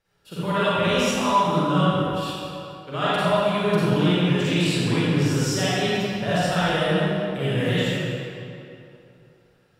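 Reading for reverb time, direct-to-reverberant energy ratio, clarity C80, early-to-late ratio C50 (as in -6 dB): 2.8 s, -12.0 dB, -4.5 dB, -9.0 dB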